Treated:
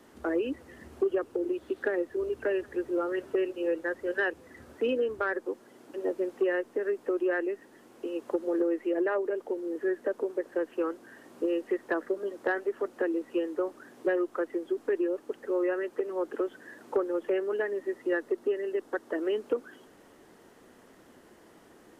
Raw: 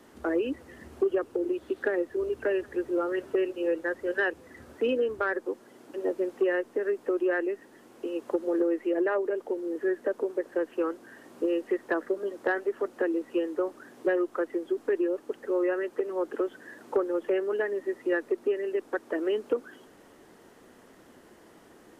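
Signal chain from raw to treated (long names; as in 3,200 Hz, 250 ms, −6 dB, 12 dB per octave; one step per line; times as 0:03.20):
0:17.98–0:19.22: notch filter 2,400 Hz, Q 10
level −1.5 dB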